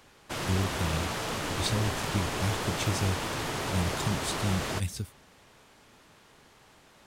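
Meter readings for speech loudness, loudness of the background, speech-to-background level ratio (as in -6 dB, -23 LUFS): -33.5 LUFS, -32.5 LUFS, -1.0 dB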